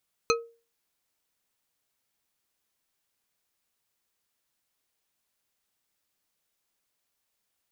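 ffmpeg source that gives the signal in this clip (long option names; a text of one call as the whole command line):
ffmpeg -f lavfi -i "aevalsrc='0.106*pow(10,-3*t/0.35)*sin(2*PI*464*t)+0.0944*pow(10,-3*t/0.172)*sin(2*PI*1279.2*t)+0.0841*pow(10,-3*t/0.107)*sin(2*PI*2507.5*t)+0.075*pow(10,-3*t/0.076)*sin(2*PI*4144.9*t)+0.0668*pow(10,-3*t/0.057)*sin(2*PI*6189.8*t)':duration=0.89:sample_rate=44100" out.wav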